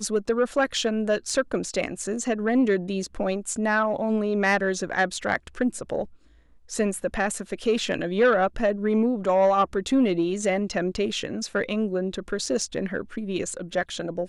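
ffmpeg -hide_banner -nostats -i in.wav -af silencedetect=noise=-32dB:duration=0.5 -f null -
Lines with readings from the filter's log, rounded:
silence_start: 6.04
silence_end: 6.72 | silence_duration: 0.68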